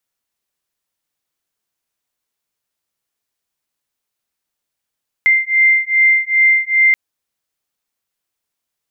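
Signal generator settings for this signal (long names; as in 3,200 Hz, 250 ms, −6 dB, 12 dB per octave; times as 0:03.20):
two tones that beat 2,090 Hz, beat 2.5 Hz, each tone −13 dBFS 1.68 s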